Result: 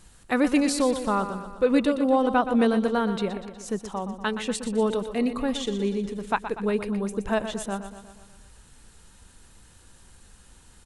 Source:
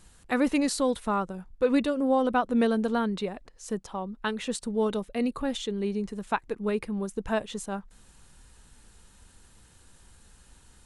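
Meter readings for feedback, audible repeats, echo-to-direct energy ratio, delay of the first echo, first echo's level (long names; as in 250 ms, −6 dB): 57%, 6, −9.0 dB, 121 ms, −10.5 dB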